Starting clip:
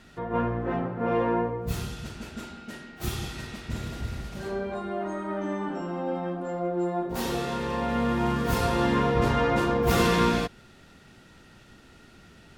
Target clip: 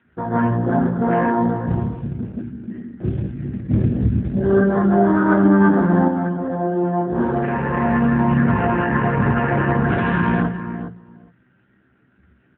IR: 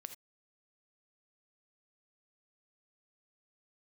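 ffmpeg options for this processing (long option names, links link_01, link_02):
-filter_complex "[0:a]afwtdn=0.0178,equalizer=frequency=1600:width=5.9:gain=15,bandreject=frequency=60:width_type=h:width=6,bandreject=frequency=120:width_type=h:width=6,bandreject=frequency=180:width_type=h:width=6,asplit=2[link_01][link_02];[link_02]adelay=16,volume=-4.5dB[link_03];[link_01][link_03]amix=inputs=2:normalize=0,alimiter=limit=-17dB:level=0:latency=1:release=59,lowpass=frequency=2900:width=0.5412,lowpass=frequency=2900:width=1.3066,lowshelf=frequency=410:gain=8.5,asplit=2[link_04][link_05];[link_05]adelay=410,lowpass=frequency=1100:poles=1,volume=-9dB,asplit=2[link_06][link_07];[link_07]adelay=410,lowpass=frequency=1100:poles=1,volume=0.15[link_08];[link_04][link_06][link_08]amix=inputs=3:normalize=0,asplit=3[link_09][link_10][link_11];[link_09]afade=type=out:start_time=3.7:duration=0.02[link_12];[link_10]acontrast=54,afade=type=in:start_time=3.7:duration=0.02,afade=type=out:start_time=6.07:duration=0.02[link_13];[link_11]afade=type=in:start_time=6.07:duration=0.02[link_14];[link_12][link_13][link_14]amix=inputs=3:normalize=0,volume=5dB" -ar 8000 -c:a libopencore_amrnb -b:a 7400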